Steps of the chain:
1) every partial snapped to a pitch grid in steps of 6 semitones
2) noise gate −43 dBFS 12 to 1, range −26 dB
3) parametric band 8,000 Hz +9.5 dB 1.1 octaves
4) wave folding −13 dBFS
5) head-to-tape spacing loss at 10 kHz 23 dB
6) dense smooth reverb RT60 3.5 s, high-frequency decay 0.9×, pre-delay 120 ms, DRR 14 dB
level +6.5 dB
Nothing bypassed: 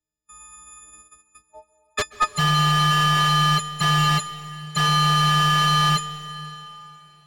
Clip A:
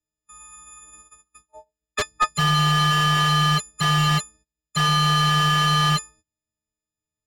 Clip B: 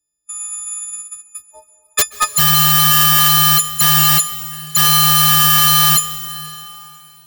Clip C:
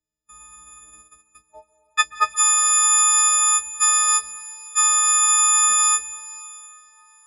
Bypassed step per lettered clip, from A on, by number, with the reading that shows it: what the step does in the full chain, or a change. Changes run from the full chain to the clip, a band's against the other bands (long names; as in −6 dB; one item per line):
6, change in momentary loudness spread −9 LU
5, 8 kHz band +16.0 dB
4, change in crest factor +5.0 dB